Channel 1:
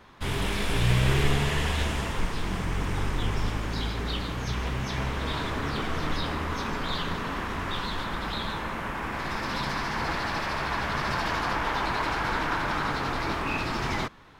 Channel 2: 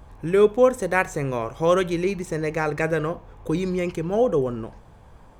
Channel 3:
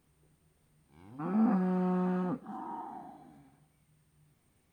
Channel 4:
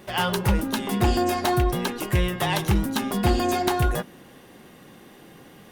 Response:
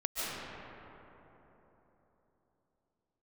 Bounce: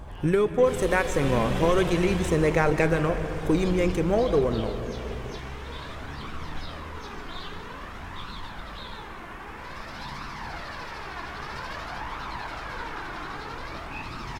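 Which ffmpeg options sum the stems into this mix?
-filter_complex "[0:a]acontrast=70,flanger=delay=0.7:depth=2.2:regen=48:speed=0.51:shape=triangular,adelay=450,volume=-10dB[a];[1:a]acompressor=threshold=-22dB:ratio=5,aphaser=in_gain=1:out_gain=1:delay=3.9:decay=0.24:speed=0.39:type=sinusoidal,volume=1.5dB,asplit=2[b][c];[c]volume=-15dB[d];[2:a]volume=-4.5dB[e];[3:a]lowpass=4k,acompressor=threshold=-37dB:ratio=1.5,volume=-18dB[f];[4:a]atrim=start_sample=2205[g];[d][g]afir=irnorm=-1:irlink=0[h];[a][b][e][f][h]amix=inputs=5:normalize=0,aeval=exprs='0.376*(cos(1*acos(clip(val(0)/0.376,-1,1)))-cos(1*PI/2))+0.00841*(cos(8*acos(clip(val(0)/0.376,-1,1)))-cos(8*PI/2))':c=same"

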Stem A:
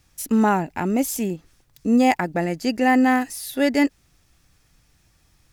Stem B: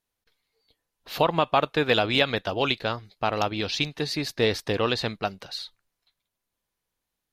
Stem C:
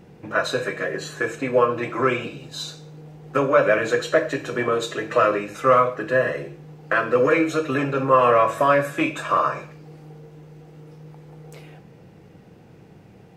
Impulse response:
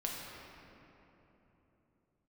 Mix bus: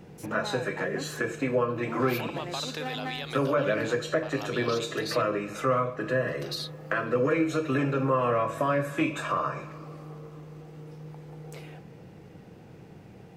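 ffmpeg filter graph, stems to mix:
-filter_complex "[0:a]lowpass=f=2.5k:p=1,asoftclip=type=hard:threshold=-17dB,volume=-8dB[a];[1:a]aemphasis=mode=production:type=50kf,acompressor=threshold=-24dB:ratio=6,adelay=1000,volume=-1dB,asplit=3[b][c][d];[b]atrim=end=5.22,asetpts=PTS-STARTPTS,afade=t=out:st=5.216:d=0.004:c=hsin[e];[c]atrim=start=5.22:end=6.28,asetpts=PTS-STARTPTS,volume=0[f];[d]atrim=start=6.28,asetpts=PTS-STARTPTS,afade=t=in:d=0.004:c=hsin[g];[e][f][g]concat=n=3:v=0:a=1[h];[2:a]volume=-1dB,asplit=2[i][j];[j]volume=-23dB[k];[a][h]amix=inputs=2:normalize=0,highpass=420,alimiter=limit=-21.5dB:level=0:latency=1,volume=0dB[l];[3:a]atrim=start_sample=2205[m];[k][m]afir=irnorm=-1:irlink=0[n];[i][l][n]amix=inputs=3:normalize=0,acrossover=split=290[o][p];[p]acompressor=threshold=-32dB:ratio=2[q];[o][q]amix=inputs=2:normalize=0"

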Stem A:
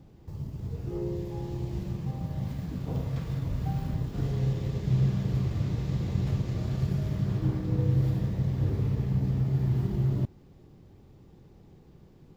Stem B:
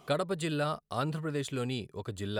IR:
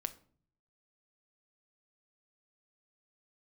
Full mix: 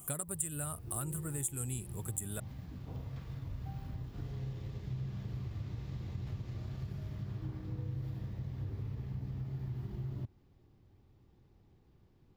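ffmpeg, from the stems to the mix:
-filter_complex "[0:a]equalizer=f=150:t=o:w=1:g=-13,volume=-9dB[a];[1:a]aexciter=amount=5.2:drive=7.8:freq=6.9k,highshelf=f=6.3k:t=q:w=3:g=10,volume=-5dB[b];[a][b]amix=inputs=2:normalize=0,equalizer=f=125:t=o:w=1:g=9,equalizer=f=500:t=o:w=1:g=-5,equalizer=f=8k:t=o:w=1:g=-5,acompressor=threshold=-36dB:ratio=3"

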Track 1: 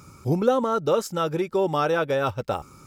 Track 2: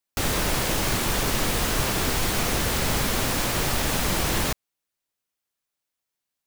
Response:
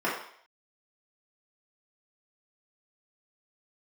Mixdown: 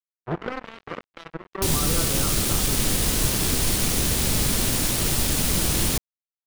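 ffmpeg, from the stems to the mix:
-filter_complex "[0:a]asubboost=boost=6:cutoff=160,volume=14.5dB,asoftclip=hard,volume=-14.5dB,lowpass=f=1.2k:t=q:w=5.7,volume=-7.5dB,asplit=2[a][b];[b]volume=-13.5dB[c];[1:a]adelay=1450,volume=2.5dB[d];[2:a]atrim=start_sample=2205[e];[c][e]afir=irnorm=-1:irlink=0[f];[a][d][f]amix=inputs=3:normalize=0,equalizer=f=9.5k:w=3.7:g=5.5,acrossover=split=410|3000[g][h][i];[h]acompressor=threshold=-36dB:ratio=6[j];[g][j][i]amix=inputs=3:normalize=0,acrusher=bits=3:mix=0:aa=0.5"

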